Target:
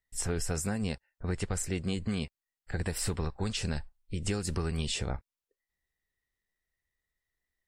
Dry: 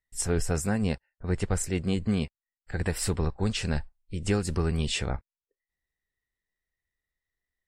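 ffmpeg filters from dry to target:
-filter_complex "[0:a]acrossover=split=1000|3500[s0][s1][s2];[s0]acompressor=threshold=0.0282:ratio=4[s3];[s1]acompressor=threshold=0.00631:ratio=4[s4];[s2]acompressor=threshold=0.02:ratio=4[s5];[s3][s4][s5]amix=inputs=3:normalize=0,volume=1.12"

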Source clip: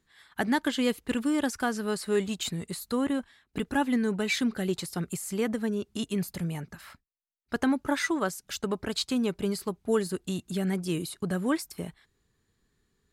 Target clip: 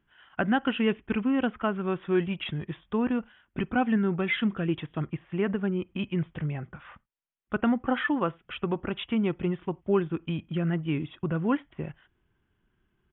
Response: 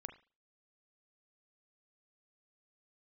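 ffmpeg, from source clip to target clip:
-filter_complex "[0:a]aresample=8000,aresample=44100,asplit=2[s0][s1];[1:a]atrim=start_sample=2205,atrim=end_sample=4410[s2];[s1][s2]afir=irnorm=-1:irlink=0,volume=0.282[s3];[s0][s3]amix=inputs=2:normalize=0,asetrate=39289,aresample=44100,atempo=1.12246"

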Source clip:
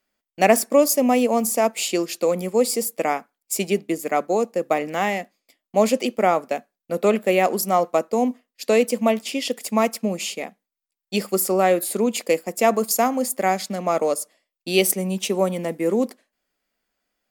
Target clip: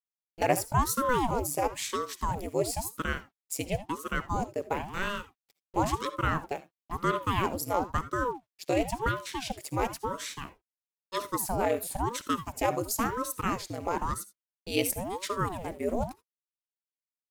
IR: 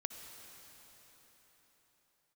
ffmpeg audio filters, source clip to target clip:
-filter_complex "[0:a]acrusher=bits=7:mix=0:aa=0.5[s0];[1:a]atrim=start_sample=2205,atrim=end_sample=3969[s1];[s0][s1]afir=irnorm=-1:irlink=0,aeval=exprs='val(0)*sin(2*PI*440*n/s+440*0.85/0.98*sin(2*PI*0.98*n/s))':c=same,volume=0.596"

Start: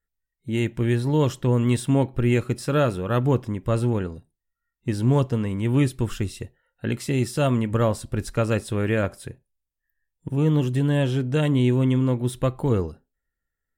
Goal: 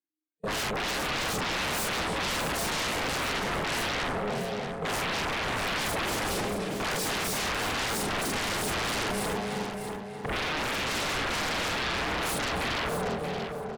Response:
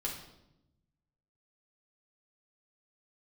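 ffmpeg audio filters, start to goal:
-filter_complex "[0:a]afftfilt=real='re':imag='-im':win_size=4096:overlap=0.75,alimiter=limit=0.0841:level=0:latency=1:release=38,aeval=exprs='val(0)*sin(2*PI*310*n/s)':c=same,highpass=f=140:w=0.5412,highpass=f=140:w=1.3066,agate=range=0.0447:threshold=0.00251:ratio=16:detection=peak,asplit=2[s0][s1];[s1]adelay=295,lowpass=f=4500:p=1,volume=0.282,asplit=2[s2][s3];[s3]adelay=295,lowpass=f=4500:p=1,volume=0.49,asplit=2[s4][s5];[s5]adelay=295,lowpass=f=4500:p=1,volume=0.49,asplit=2[s6][s7];[s7]adelay=295,lowpass=f=4500:p=1,volume=0.49,asplit=2[s8][s9];[s9]adelay=295,lowpass=f=4500:p=1,volume=0.49[s10];[s2][s4][s6][s8][s10]amix=inputs=5:normalize=0[s11];[s0][s11]amix=inputs=2:normalize=0,aeval=exprs='0.0891*sin(PI/2*10*val(0)/0.0891)':c=same,asplit=2[s12][s13];[s13]aecho=0:1:631|1262|1893:0.376|0.0752|0.015[s14];[s12][s14]amix=inputs=2:normalize=0,volume=0.473"

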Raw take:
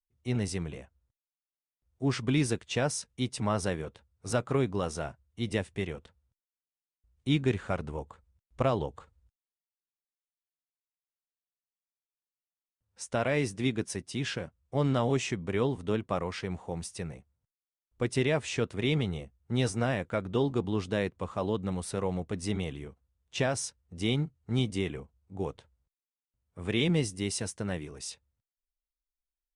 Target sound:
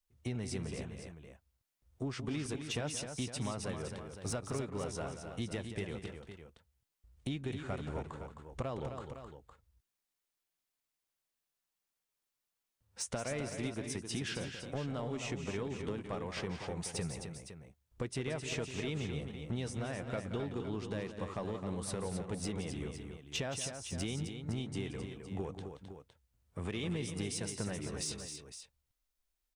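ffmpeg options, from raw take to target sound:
-filter_complex "[0:a]acompressor=threshold=0.00891:ratio=10,asoftclip=type=tanh:threshold=0.0211,asplit=2[s0][s1];[s1]aecho=0:1:176|262|511:0.282|0.422|0.282[s2];[s0][s2]amix=inputs=2:normalize=0,volume=2.11"

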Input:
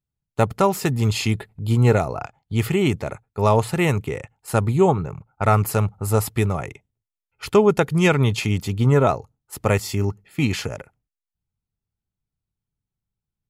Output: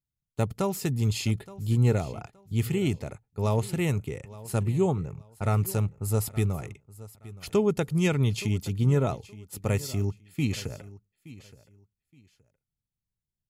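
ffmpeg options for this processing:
-filter_complex "[0:a]equalizer=f=1100:w=0.49:g=-9.5,asplit=2[s0][s1];[s1]aecho=0:1:871|1742:0.119|0.0285[s2];[s0][s2]amix=inputs=2:normalize=0,volume=0.596"

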